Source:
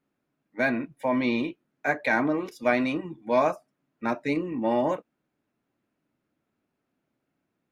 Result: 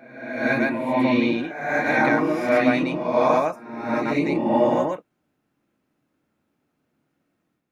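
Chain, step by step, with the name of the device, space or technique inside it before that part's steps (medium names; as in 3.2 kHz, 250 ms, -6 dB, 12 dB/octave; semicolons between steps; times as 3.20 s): reverse reverb (reverse; reverberation RT60 1.1 s, pre-delay 94 ms, DRR -4 dB; reverse)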